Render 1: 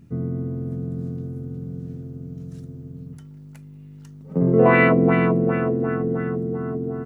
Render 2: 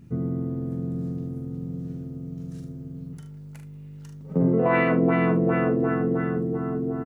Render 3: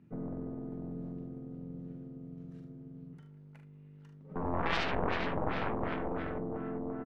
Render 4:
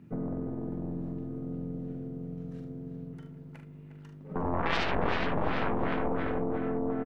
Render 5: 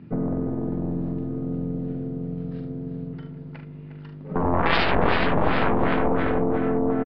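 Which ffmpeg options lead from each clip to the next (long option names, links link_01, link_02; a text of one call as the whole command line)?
ffmpeg -i in.wav -af "alimiter=limit=-11.5dB:level=0:latency=1:release=416,aecho=1:1:42|75:0.473|0.266" out.wav
ffmpeg -i in.wav -filter_complex "[0:a]acrossover=split=150 3300:gain=0.224 1 0.112[link_01][link_02][link_03];[link_01][link_02][link_03]amix=inputs=3:normalize=0,aeval=exprs='0.335*(cos(1*acos(clip(val(0)/0.335,-1,1)))-cos(1*PI/2))+0.15*(cos(3*acos(clip(val(0)/0.335,-1,1)))-cos(3*PI/2))+0.0596*(cos(4*acos(clip(val(0)/0.335,-1,1)))-cos(4*PI/2))+0.0188*(cos(7*acos(clip(val(0)/0.335,-1,1)))-cos(7*PI/2))':channel_layout=same,volume=-5.5dB" out.wav
ffmpeg -i in.wav -filter_complex "[0:a]asplit=2[link_01][link_02];[link_02]acompressor=threshold=-40dB:ratio=6,volume=3dB[link_03];[link_01][link_03]amix=inputs=2:normalize=0,asplit=2[link_04][link_05];[link_05]adelay=357,lowpass=frequency=3500:poles=1,volume=-9dB,asplit=2[link_06][link_07];[link_07]adelay=357,lowpass=frequency=3500:poles=1,volume=0.46,asplit=2[link_08][link_09];[link_09]adelay=357,lowpass=frequency=3500:poles=1,volume=0.46,asplit=2[link_10][link_11];[link_11]adelay=357,lowpass=frequency=3500:poles=1,volume=0.46,asplit=2[link_12][link_13];[link_13]adelay=357,lowpass=frequency=3500:poles=1,volume=0.46[link_14];[link_04][link_06][link_08][link_10][link_12][link_14]amix=inputs=6:normalize=0" out.wav
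ffmpeg -i in.wav -af "aresample=11025,aresample=44100,volume=8.5dB" out.wav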